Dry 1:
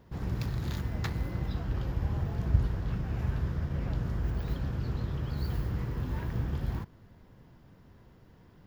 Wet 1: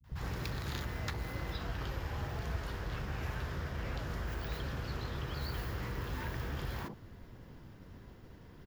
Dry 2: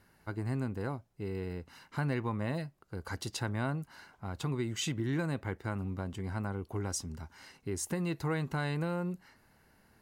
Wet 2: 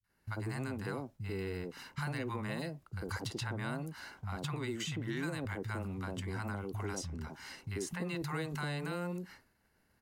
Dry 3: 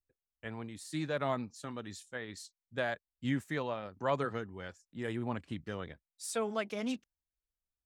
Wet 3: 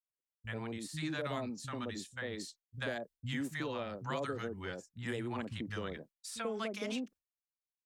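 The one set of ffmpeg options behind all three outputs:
-filter_complex "[0:a]acrossover=split=160|800[s0][s1][s2];[s2]adelay=40[s3];[s1]adelay=90[s4];[s0][s4][s3]amix=inputs=3:normalize=0,acrossover=split=470|1100|3800[s5][s6][s7][s8];[s5]acompressor=threshold=0.00631:ratio=4[s9];[s6]acompressor=threshold=0.00251:ratio=4[s10];[s7]acompressor=threshold=0.00355:ratio=4[s11];[s8]acompressor=threshold=0.002:ratio=4[s12];[s9][s10][s11][s12]amix=inputs=4:normalize=0,agate=range=0.0224:threshold=0.00158:ratio=3:detection=peak,volume=1.88"

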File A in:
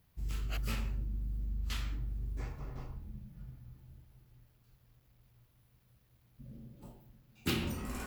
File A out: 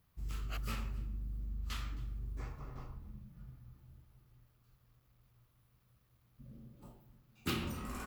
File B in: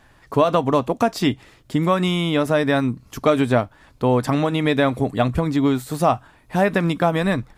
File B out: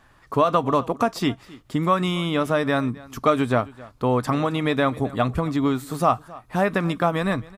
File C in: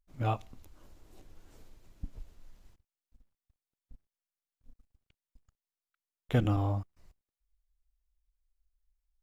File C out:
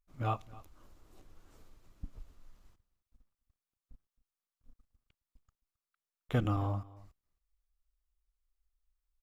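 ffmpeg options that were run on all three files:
-af "equalizer=f=1200:t=o:w=0.39:g=7,aecho=1:1:267:0.0891,volume=0.668"

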